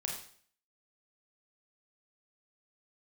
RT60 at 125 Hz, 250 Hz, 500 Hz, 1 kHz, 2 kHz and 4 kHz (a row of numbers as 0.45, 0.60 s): 0.55, 0.55, 0.55, 0.50, 0.50, 0.50 s